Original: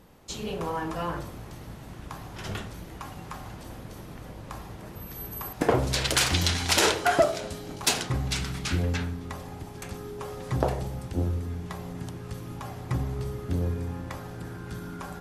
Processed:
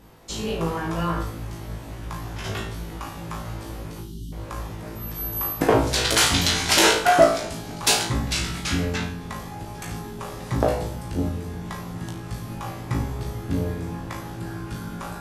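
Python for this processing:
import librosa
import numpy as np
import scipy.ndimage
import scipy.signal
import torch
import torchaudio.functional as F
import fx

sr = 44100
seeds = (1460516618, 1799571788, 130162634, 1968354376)

y = fx.spec_erase(x, sr, start_s=4.0, length_s=0.32, low_hz=390.0, high_hz=2800.0)
y = fx.room_flutter(y, sr, wall_m=3.1, rt60_s=0.38)
y = F.gain(torch.from_numpy(y), 2.5).numpy()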